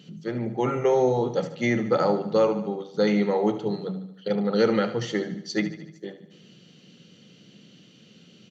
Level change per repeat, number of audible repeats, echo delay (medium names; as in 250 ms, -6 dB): -5.0 dB, 5, 74 ms